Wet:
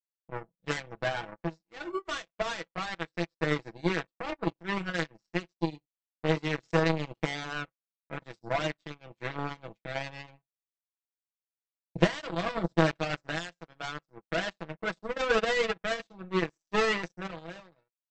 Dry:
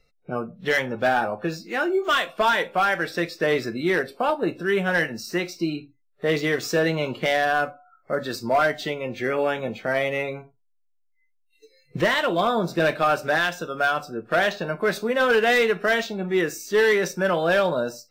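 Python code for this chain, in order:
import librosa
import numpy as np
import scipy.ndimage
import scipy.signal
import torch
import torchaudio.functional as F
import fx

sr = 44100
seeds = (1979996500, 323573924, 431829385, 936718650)

y = fx.fade_out_tail(x, sr, length_s=1.06)
y = fx.low_shelf(y, sr, hz=240.0, db=11.5)
y = fx.power_curve(y, sr, exponent=3.0)
y = fx.brickwall_lowpass(y, sr, high_hz=8200.0)
y = y + 0.73 * np.pad(y, (int(6.1 * sr / 1000.0), 0))[:len(y)]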